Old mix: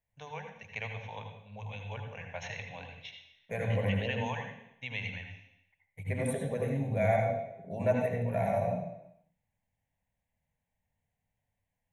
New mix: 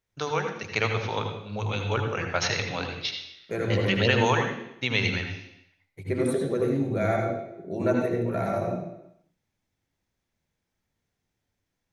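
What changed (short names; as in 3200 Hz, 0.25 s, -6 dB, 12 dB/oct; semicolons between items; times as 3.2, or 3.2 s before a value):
first voice +10.5 dB; master: remove fixed phaser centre 1300 Hz, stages 6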